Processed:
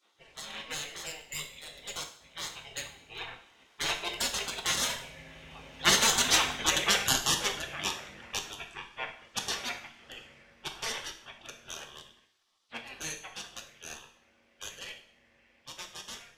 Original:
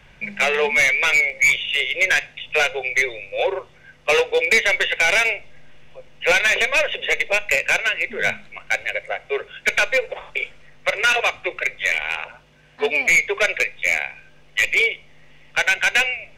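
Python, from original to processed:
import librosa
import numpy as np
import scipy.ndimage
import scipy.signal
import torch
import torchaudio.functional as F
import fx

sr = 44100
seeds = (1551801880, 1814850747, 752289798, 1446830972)

y = fx.doppler_pass(x, sr, speed_mps=24, closest_m=20.0, pass_at_s=6.61)
y = fx.spec_gate(y, sr, threshold_db=-20, keep='weak')
y = fx.rev_double_slope(y, sr, seeds[0], early_s=0.57, late_s=1.6, knee_db=-26, drr_db=4.5)
y = F.gain(torch.from_numpy(y), 7.0).numpy()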